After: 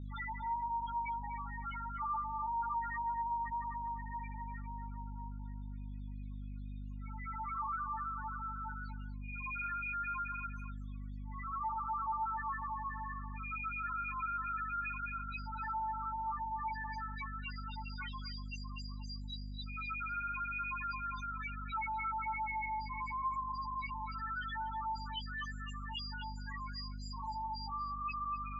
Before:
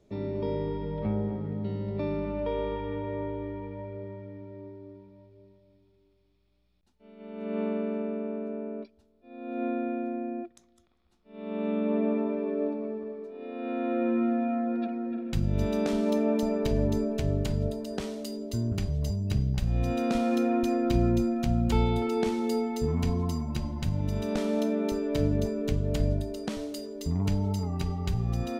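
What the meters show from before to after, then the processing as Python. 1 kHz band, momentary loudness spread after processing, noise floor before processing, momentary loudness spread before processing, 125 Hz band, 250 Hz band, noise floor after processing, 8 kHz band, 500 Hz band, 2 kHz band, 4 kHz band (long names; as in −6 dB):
+3.5 dB, 9 LU, −66 dBFS, 13 LU, −16.0 dB, −23.5 dB, −43 dBFS, below −15 dB, below −40 dB, +3.5 dB, −4.5 dB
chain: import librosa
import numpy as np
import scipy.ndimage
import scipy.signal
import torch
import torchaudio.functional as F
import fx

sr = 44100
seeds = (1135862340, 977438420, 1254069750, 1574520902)

y = fx.fade_out_tail(x, sr, length_s=0.52)
y = scipy.signal.sosfilt(scipy.signal.butter(16, 920.0, 'highpass', fs=sr, output='sos'), y)
y = fx.high_shelf(y, sr, hz=8900.0, db=4.0)
y = y + 0.87 * np.pad(y, (int(3.6 * sr / 1000.0), 0))[:len(y)]
y = fx.rider(y, sr, range_db=5, speed_s=0.5)
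y = fx.chorus_voices(y, sr, voices=6, hz=0.8, base_ms=19, depth_ms=2.1, mix_pct=65)
y = fx.spec_topn(y, sr, count=1)
y = fx.add_hum(y, sr, base_hz=50, snr_db=11)
y = fx.air_absorb(y, sr, metres=350.0)
y = y + 10.0 ** (-12.5 / 20.0) * np.pad(y, (int(244 * sr / 1000.0), 0))[:len(y)]
y = fx.env_flatten(y, sr, amount_pct=50)
y = y * librosa.db_to_amplitude(13.5)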